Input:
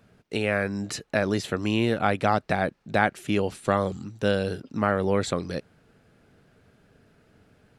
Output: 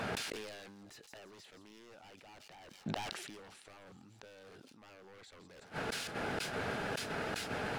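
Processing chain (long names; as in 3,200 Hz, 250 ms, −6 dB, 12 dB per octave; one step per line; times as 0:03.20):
parametric band 830 Hz +5.5 dB 0.33 octaves
reversed playback
downward compressor 16 to 1, threshold −33 dBFS, peak gain reduction 20 dB
reversed playback
mid-hump overdrive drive 15 dB, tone 3,000 Hz, clips at −20.5 dBFS
wave folding −32.5 dBFS
gate with flip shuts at −44 dBFS, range −35 dB
on a send: delay with a high-pass on its return 169 ms, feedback 50%, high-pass 4,500 Hz, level −9 dB
on the sum: level that may fall only so fast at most 31 dB per second
level +17 dB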